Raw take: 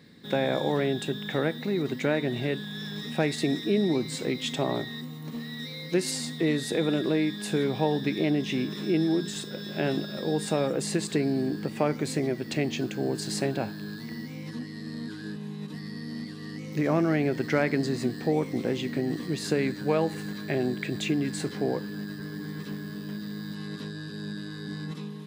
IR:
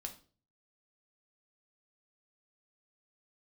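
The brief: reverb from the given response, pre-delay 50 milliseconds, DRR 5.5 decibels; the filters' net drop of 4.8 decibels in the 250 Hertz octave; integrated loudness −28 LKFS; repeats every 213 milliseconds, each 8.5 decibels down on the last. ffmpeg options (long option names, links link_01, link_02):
-filter_complex "[0:a]equalizer=frequency=250:width_type=o:gain=-6.5,aecho=1:1:213|426|639|852:0.376|0.143|0.0543|0.0206,asplit=2[link_01][link_02];[1:a]atrim=start_sample=2205,adelay=50[link_03];[link_02][link_03]afir=irnorm=-1:irlink=0,volume=-2.5dB[link_04];[link_01][link_04]amix=inputs=2:normalize=0,volume=2dB"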